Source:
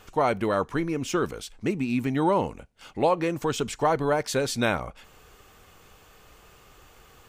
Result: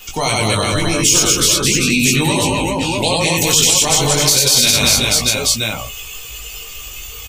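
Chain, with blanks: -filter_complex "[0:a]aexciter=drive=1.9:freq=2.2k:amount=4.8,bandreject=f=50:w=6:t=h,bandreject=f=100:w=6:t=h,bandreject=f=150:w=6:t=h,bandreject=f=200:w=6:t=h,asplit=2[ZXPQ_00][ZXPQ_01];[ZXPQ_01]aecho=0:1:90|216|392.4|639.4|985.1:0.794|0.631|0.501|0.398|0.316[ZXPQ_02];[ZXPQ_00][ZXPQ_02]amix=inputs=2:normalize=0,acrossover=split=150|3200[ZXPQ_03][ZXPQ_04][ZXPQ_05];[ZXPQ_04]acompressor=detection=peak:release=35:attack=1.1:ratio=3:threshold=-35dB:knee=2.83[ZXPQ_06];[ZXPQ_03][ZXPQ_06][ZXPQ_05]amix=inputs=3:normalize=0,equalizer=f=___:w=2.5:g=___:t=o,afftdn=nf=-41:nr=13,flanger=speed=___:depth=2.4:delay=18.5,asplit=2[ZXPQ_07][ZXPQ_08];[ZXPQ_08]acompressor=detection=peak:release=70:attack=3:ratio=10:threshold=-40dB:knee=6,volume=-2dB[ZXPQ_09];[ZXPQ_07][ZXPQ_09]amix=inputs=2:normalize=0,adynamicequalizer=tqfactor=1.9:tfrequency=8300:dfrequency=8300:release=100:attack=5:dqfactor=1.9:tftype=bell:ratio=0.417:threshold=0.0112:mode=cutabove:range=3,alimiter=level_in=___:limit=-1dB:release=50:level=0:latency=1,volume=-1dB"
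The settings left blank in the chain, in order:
340, -2, 0.34, 17.5dB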